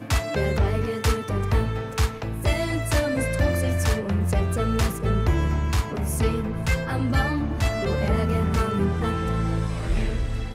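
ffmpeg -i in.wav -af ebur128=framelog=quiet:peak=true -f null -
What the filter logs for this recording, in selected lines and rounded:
Integrated loudness:
  I:         -24.5 LUFS
  Threshold: -34.5 LUFS
Loudness range:
  LRA:         0.9 LU
  Threshold: -44.4 LUFS
  LRA low:   -24.7 LUFS
  LRA high:  -23.8 LUFS
True peak:
  Peak:      -11.0 dBFS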